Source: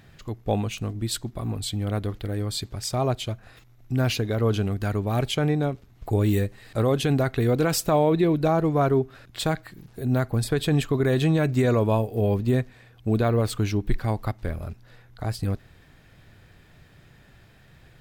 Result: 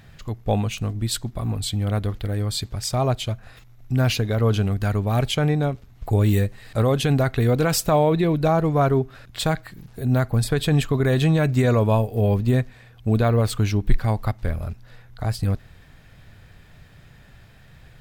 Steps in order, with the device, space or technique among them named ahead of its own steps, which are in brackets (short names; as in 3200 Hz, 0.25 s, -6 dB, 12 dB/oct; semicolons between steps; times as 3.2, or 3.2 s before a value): low shelf boost with a cut just above (low shelf 76 Hz +5 dB; bell 340 Hz -5 dB 0.62 oct); gain +3 dB